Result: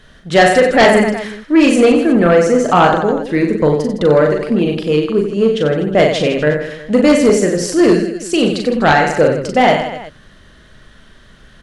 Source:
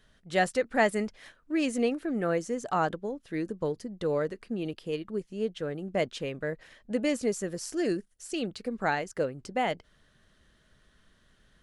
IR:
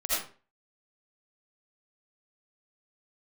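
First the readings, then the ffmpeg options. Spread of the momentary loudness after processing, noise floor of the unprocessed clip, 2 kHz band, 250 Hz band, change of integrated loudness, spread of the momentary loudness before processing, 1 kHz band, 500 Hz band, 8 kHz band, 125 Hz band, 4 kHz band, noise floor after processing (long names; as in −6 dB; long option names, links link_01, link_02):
6 LU, −66 dBFS, +17.0 dB, +18.5 dB, +18.5 dB, 8 LU, +17.5 dB, +18.5 dB, +15.5 dB, +19.0 dB, +18.5 dB, −44 dBFS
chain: -filter_complex "[0:a]highshelf=frequency=7700:gain=-9,asplit=2[link_01][link_02];[link_02]aecho=0:1:40|92|159.6|247.5|361.7:0.631|0.398|0.251|0.158|0.1[link_03];[link_01][link_03]amix=inputs=2:normalize=0,aeval=exprs='0.376*sin(PI/2*2.82*val(0)/0.376)':channel_layout=same,volume=5dB"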